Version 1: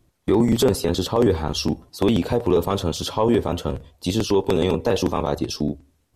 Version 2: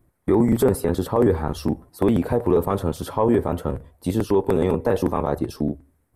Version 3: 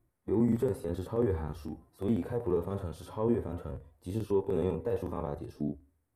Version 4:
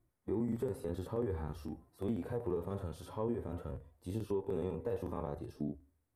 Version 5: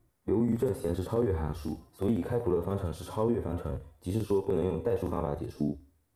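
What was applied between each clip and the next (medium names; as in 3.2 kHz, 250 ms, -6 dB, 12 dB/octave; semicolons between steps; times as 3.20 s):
high-order bell 4.3 kHz -13 dB
harmonic-percussive split percussive -17 dB; trim -7 dB
compression 4:1, threshold -29 dBFS, peak gain reduction 6.5 dB; trim -3 dB
feedback echo behind a high-pass 73 ms, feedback 37%, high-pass 3.3 kHz, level -5 dB; trim +8 dB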